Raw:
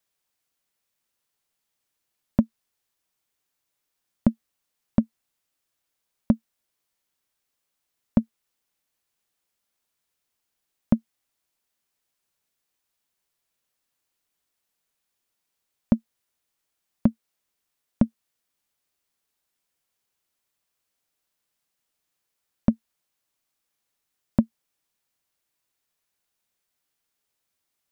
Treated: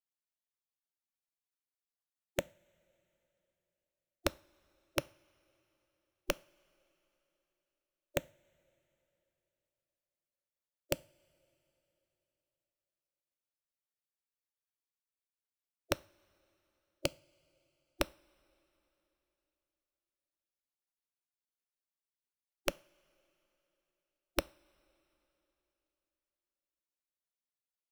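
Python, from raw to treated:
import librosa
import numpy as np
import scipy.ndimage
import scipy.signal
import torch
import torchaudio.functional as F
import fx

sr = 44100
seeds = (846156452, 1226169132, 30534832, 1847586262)

y = fx.spec_gate(x, sr, threshold_db=-15, keep='weak')
y = (np.mod(10.0 ** (18.5 / 20.0) * y + 1.0, 2.0) - 1.0) / 10.0 ** (18.5 / 20.0)
y = fx.rev_double_slope(y, sr, seeds[0], early_s=0.37, late_s=3.6, knee_db=-20, drr_db=19.0)
y = F.gain(torch.from_numpy(y), 1.5).numpy()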